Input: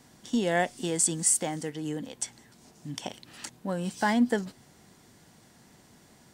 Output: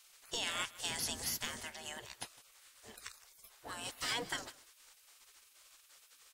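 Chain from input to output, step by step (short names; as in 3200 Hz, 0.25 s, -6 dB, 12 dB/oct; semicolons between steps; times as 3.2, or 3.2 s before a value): spectral gate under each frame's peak -20 dB weak; 0.89–1.65 low shelf 210 Hz +10 dB; echo 0.156 s -20 dB; gain +3 dB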